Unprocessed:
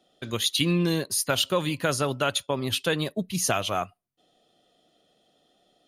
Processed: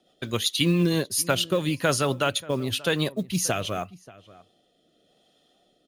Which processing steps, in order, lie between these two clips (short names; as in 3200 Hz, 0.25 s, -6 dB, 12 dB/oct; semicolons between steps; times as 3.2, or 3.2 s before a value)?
rotary speaker horn 7.5 Hz, later 0.9 Hz, at 0.55; short-mantissa float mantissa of 4-bit; outdoor echo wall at 100 m, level -20 dB; gain +3.5 dB